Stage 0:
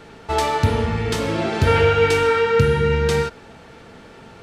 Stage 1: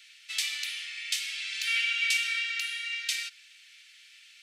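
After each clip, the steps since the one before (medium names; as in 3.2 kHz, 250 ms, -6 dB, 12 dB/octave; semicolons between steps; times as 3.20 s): steep high-pass 2.2 kHz 36 dB/octave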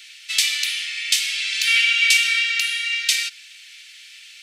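tilt shelf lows -7 dB, about 930 Hz; trim +5.5 dB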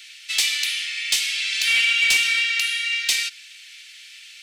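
saturation -10.5 dBFS, distortion -17 dB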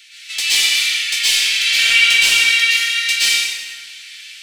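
plate-style reverb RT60 1.5 s, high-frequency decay 0.75×, pre-delay 105 ms, DRR -9.5 dB; trim -2 dB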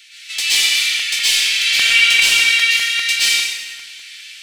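crackling interface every 0.20 s, samples 128, repeat, from 0.99 s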